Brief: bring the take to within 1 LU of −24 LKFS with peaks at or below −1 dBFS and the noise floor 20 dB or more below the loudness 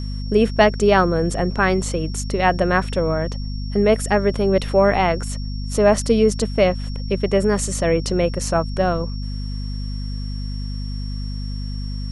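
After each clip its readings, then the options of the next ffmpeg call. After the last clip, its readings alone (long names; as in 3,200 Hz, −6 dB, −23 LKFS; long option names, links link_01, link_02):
mains hum 50 Hz; hum harmonics up to 250 Hz; level of the hum −24 dBFS; interfering tone 5,500 Hz; level of the tone −39 dBFS; integrated loudness −20.5 LKFS; sample peak −2.5 dBFS; target loudness −24.0 LKFS
→ -af "bandreject=frequency=50:width_type=h:width=6,bandreject=frequency=100:width_type=h:width=6,bandreject=frequency=150:width_type=h:width=6,bandreject=frequency=200:width_type=h:width=6,bandreject=frequency=250:width_type=h:width=6"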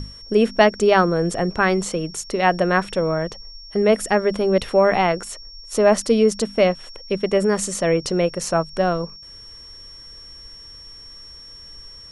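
mains hum none found; interfering tone 5,500 Hz; level of the tone −39 dBFS
→ -af "bandreject=frequency=5500:width=30"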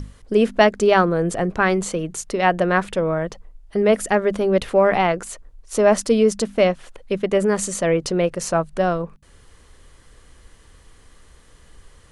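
interfering tone none found; integrated loudness −19.5 LKFS; sample peak −2.0 dBFS; target loudness −24.0 LKFS
→ -af "volume=-4.5dB"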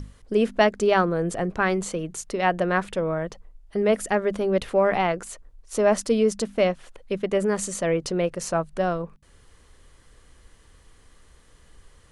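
integrated loudness −24.0 LKFS; sample peak −6.5 dBFS; background noise floor −55 dBFS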